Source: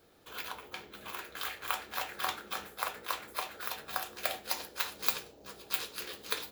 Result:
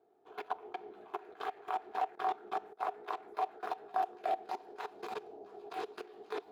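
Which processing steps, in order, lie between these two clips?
2.15–2.9 expander -43 dBFS; level quantiser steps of 20 dB; double band-pass 540 Hz, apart 0.8 oct; gain +18 dB

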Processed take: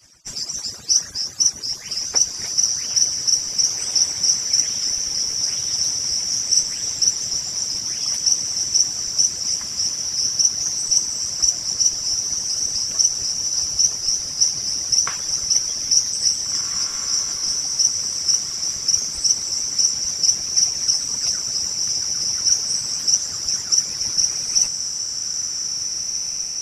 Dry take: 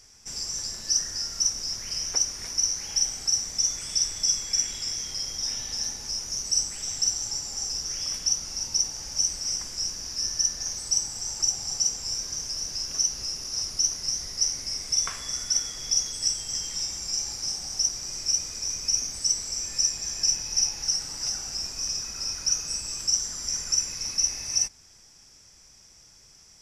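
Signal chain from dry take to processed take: median-filter separation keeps percussive; diffused feedback echo 1.878 s, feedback 41%, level -3.5 dB; gain +7.5 dB

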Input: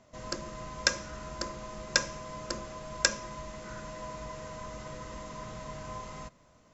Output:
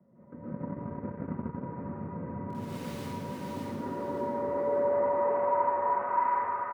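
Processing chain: comb 6.9 ms, depth 44%; auto swell 0.206 s; band-pass sweep 230 Hz -> 1300 Hz, 2.95–5.98; mistuned SSB -52 Hz 190–2200 Hz; 2.5–2.94 requantised 10-bit, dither none; 5.51–5.99 air absorption 450 m; feedback echo 0.58 s, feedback 34%, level -4 dB; reverb RT60 2.4 s, pre-delay 0.111 s, DRR -10.5 dB; 0.47–1.64 transient shaper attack +7 dB, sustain -11 dB; gain +7.5 dB

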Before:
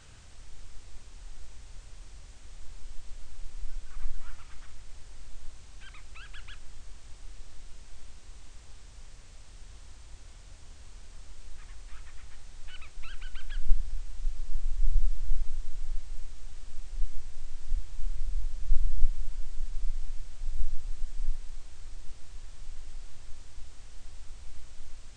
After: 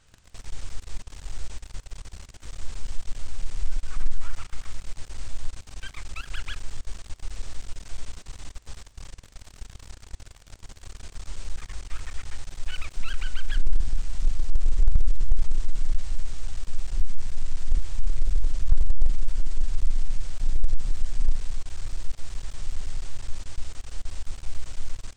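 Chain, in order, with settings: sample leveller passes 3; gain -1.5 dB

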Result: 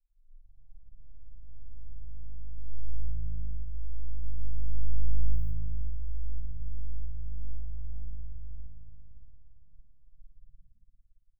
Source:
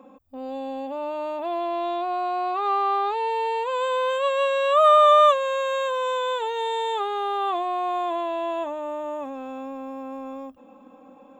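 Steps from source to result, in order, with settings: tracing distortion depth 0.063 ms; inverse Chebyshev band-stop 120–6500 Hz, stop band 70 dB; low-pass opened by the level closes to 360 Hz, open at -37 dBFS; comb 2.8 ms, depth 90%; soft clip -38.5 dBFS, distortion -2 dB; on a send: frequency-shifting echo 0.133 s, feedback 48%, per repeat +53 Hz, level -18 dB; on the sum: spring tank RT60 2.8 s, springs 57 ms, DRR -2 dB; reverb removal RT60 1.4 s; gain +15 dB

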